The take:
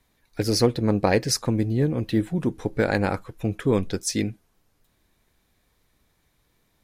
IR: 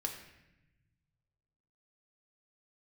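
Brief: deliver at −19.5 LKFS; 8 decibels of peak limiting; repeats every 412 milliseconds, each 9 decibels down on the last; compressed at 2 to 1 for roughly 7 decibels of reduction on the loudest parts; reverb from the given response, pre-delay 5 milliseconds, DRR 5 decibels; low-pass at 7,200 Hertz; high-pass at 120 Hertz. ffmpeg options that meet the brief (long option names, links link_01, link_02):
-filter_complex "[0:a]highpass=120,lowpass=7200,acompressor=threshold=-27dB:ratio=2,alimiter=limit=-18dB:level=0:latency=1,aecho=1:1:412|824|1236|1648:0.355|0.124|0.0435|0.0152,asplit=2[link_01][link_02];[1:a]atrim=start_sample=2205,adelay=5[link_03];[link_02][link_03]afir=irnorm=-1:irlink=0,volume=-5.5dB[link_04];[link_01][link_04]amix=inputs=2:normalize=0,volume=10dB"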